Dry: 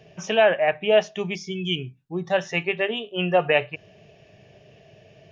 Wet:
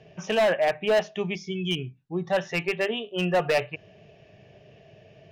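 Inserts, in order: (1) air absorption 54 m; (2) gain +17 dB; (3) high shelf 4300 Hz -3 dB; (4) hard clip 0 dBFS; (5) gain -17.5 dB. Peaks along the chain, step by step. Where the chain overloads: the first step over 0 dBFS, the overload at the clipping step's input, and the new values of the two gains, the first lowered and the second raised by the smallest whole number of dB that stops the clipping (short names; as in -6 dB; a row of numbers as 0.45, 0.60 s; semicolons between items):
-7.0, +10.0, +10.0, 0.0, -17.5 dBFS; step 2, 10.0 dB; step 2 +7 dB, step 5 -7.5 dB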